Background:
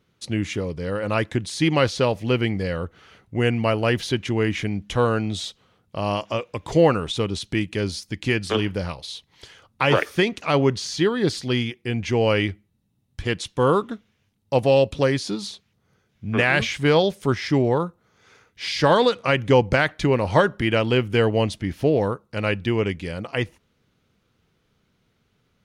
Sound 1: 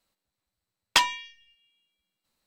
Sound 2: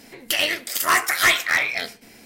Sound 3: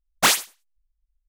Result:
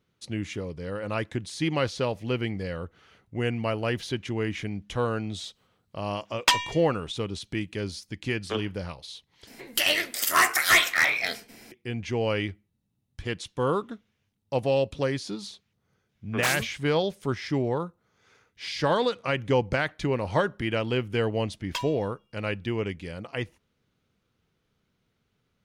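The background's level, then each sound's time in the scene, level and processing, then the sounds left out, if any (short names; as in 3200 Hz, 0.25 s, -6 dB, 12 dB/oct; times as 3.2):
background -7 dB
5.52 add 1, fades 0.05 s
9.47 replace with 2 -2 dB
16.2 add 3 -11 dB
20.79 add 1 -15.5 dB + comb 1.9 ms, depth 92%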